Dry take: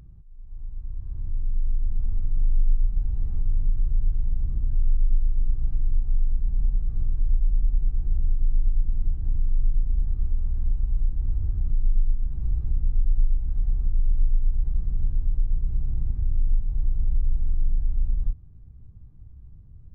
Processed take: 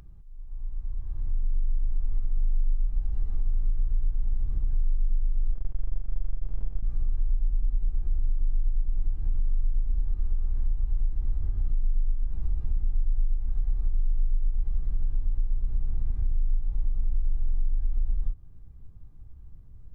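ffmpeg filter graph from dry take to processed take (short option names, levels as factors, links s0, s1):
-filter_complex "[0:a]asettb=1/sr,asplit=3[s0][s1][s2];[s0]atrim=end=5.524[s3];[s1]atrim=start=5.52:end=6.83,asetpts=PTS-STARTPTS,afade=t=in:d=0.004:c=qsin,afade=t=out:st=1.306:d=0.004:c=qsin,bandreject=f=50:t=h:w=6,bandreject=f=100:t=h:w=6,bandreject=f=150:t=h:w=6,bandreject=f=200:t=h:w=6,bandreject=f=250:t=h:w=6,bandreject=f=300:t=h:w=6,bandreject=f=350:t=h:w=6,bandreject=f=400:t=h:w=6,bandreject=f=450:t=h:w=6,aeval=exprs='max(val(0),0)':c=same[s4];[s2]atrim=start=6.826[s5];[s3][s4]acrossfade=d=0.004:c1=hsin:c2=qsin[s6];[s6][s5]acrossfade=d=0.004:c1=qsin:c2=hsin,equalizer=f=110:w=0.34:g=-10.5,acompressor=threshold=0.0501:ratio=3,volume=1.88"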